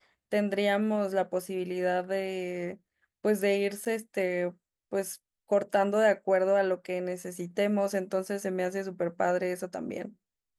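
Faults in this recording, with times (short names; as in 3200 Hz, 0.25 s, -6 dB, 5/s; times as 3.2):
3.85–3.86 gap 8.1 ms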